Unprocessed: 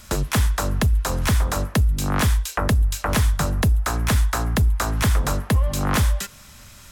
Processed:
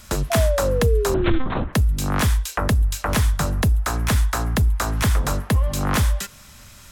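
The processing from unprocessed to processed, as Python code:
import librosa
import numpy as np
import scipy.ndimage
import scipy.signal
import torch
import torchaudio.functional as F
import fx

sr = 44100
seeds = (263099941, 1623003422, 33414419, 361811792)

y = fx.lpc_monotone(x, sr, seeds[0], pitch_hz=260.0, order=8, at=(1.14, 1.73))
y = fx.spec_paint(y, sr, seeds[1], shape='fall', start_s=0.3, length_s=1.09, low_hz=320.0, high_hz=690.0, level_db=-23.0)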